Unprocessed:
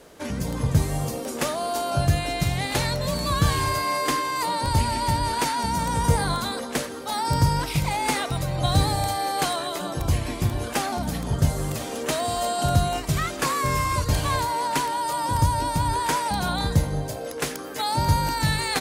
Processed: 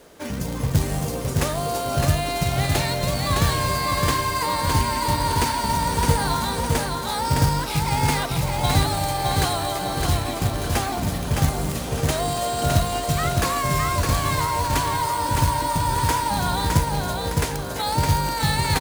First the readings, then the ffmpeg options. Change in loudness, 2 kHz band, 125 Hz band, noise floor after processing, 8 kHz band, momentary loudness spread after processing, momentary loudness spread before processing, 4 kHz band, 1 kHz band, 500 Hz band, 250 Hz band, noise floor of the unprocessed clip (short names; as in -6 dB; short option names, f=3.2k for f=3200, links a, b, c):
+2.0 dB, +2.0 dB, +2.0 dB, -28 dBFS, +3.0 dB, 4 LU, 6 LU, +2.0 dB, +2.0 dB, +2.0 dB, +2.0 dB, -33 dBFS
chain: -af "acrusher=bits=3:mode=log:mix=0:aa=0.000001,aecho=1:1:612|1224|1836|2448|3060:0.668|0.281|0.118|0.0495|0.0208"